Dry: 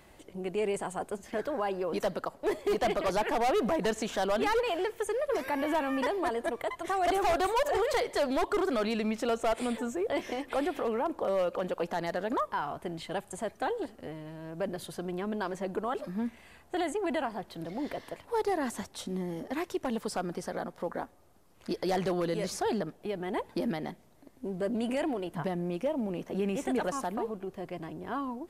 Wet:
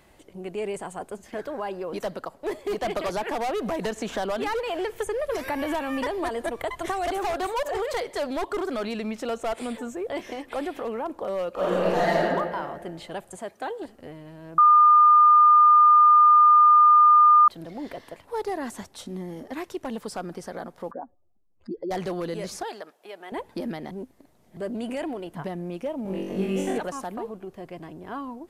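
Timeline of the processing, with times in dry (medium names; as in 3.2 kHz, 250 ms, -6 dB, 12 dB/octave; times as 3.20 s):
2.96–7.43 s: three bands compressed up and down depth 100%
11.53–12.20 s: reverb throw, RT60 1.7 s, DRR -10.5 dB
13.36–13.82 s: high-pass 200 Hz 6 dB/octave
14.58–17.48 s: bleep 1.21 kHz -11.5 dBFS
20.91–21.91 s: spectral contrast enhancement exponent 2.2
22.63–23.32 s: high-pass 630 Hz
23.91–24.57 s: reverse
26.03–26.78 s: flutter echo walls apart 3.6 m, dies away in 0.73 s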